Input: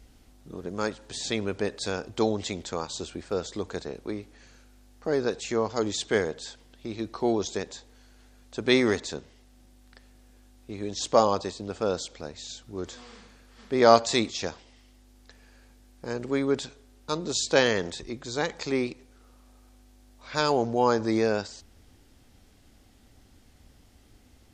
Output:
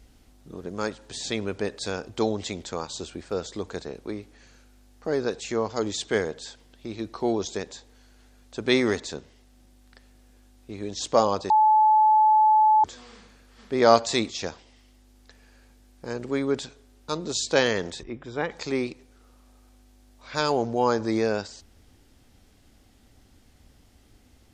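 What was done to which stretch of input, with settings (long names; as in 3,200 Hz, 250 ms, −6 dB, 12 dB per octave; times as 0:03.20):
0:11.50–0:12.84: beep over 863 Hz −14.5 dBFS
0:18.03–0:18.51: Savitzky-Golay smoothing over 25 samples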